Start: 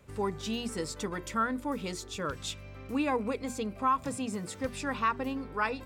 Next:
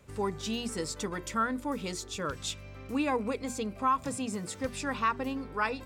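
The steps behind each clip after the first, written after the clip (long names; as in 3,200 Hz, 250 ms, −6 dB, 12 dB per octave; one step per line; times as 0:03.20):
parametric band 6,700 Hz +3 dB 1.4 octaves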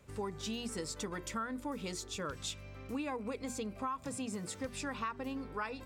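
downward compressor 5 to 1, threshold −32 dBFS, peak gain reduction 9 dB
level −3 dB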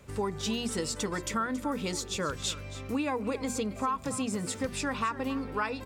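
single-tap delay 276 ms −15 dB
level +7.5 dB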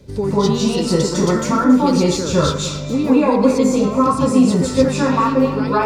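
convolution reverb RT60 0.55 s, pre-delay 148 ms, DRR −11 dB
level −1 dB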